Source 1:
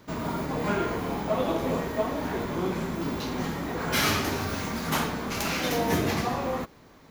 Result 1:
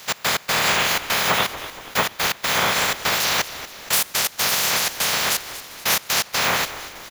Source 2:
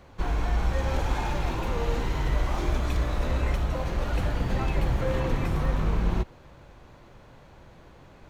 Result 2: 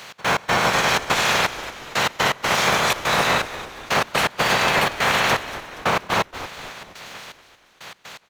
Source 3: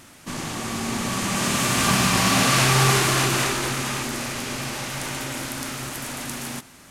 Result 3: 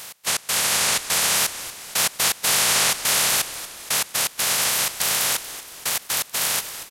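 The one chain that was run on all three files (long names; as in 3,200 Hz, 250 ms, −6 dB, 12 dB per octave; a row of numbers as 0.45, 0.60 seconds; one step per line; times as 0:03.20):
ceiling on every frequency bin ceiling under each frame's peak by 28 dB
high-pass filter 130 Hz 12 dB per octave
parametric band 300 Hz −11 dB 0.67 octaves
downward compressor 6 to 1, threshold −28 dBFS
gate pattern "x.x.xxxx.xxx...." 123 BPM −24 dB
echo with shifted repeats 236 ms, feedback 49%, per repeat −98 Hz, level −14 dB
loudness normalisation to −20 LKFS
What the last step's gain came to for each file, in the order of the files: +12.5, +12.5, +11.0 decibels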